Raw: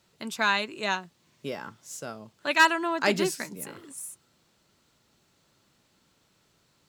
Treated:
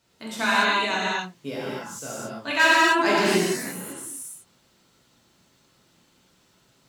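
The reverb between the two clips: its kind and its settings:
reverb whose tail is shaped and stops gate 310 ms flat, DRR −8 dB
level −3.5 dB

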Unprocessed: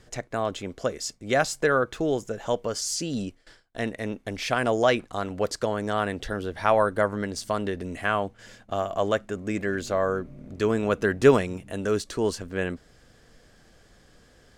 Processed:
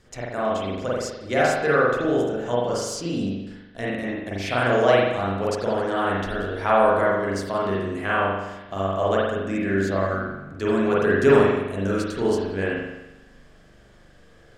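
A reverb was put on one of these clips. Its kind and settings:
spring reverb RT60 1 s, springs 41 ms, chirp 50 ms, DRR −6.5 dB
level −3.5 dB

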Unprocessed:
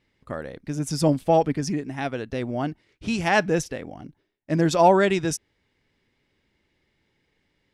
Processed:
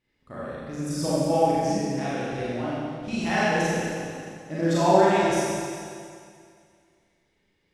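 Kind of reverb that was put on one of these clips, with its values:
four-comb reverb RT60 2.2 s, combs from 30 ms, DRR −9.5 dB
level −10.5 dB

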